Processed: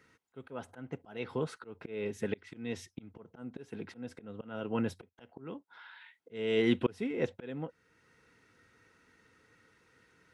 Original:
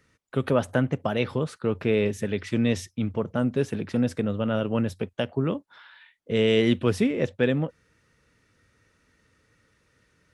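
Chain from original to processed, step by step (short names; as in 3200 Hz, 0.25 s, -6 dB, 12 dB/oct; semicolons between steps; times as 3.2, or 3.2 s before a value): low shelf 240 Hz -11.5 dB; auto swell 0.746 s; high shelf 3100 Hz -8 dB; notch comb 590 Hz; gain +5 dB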